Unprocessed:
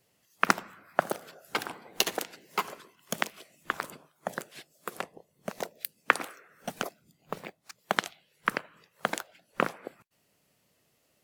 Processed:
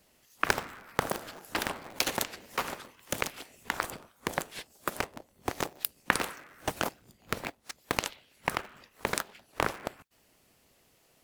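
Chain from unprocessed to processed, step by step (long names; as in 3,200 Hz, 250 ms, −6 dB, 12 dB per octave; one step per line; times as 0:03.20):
sub-harmonics by changed cycles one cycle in 3, inverted
in parallel at 0 dB: compressor whose output falls as the input rises −33 dBFS, ratio −0.5
on the sum: level −3.5 dB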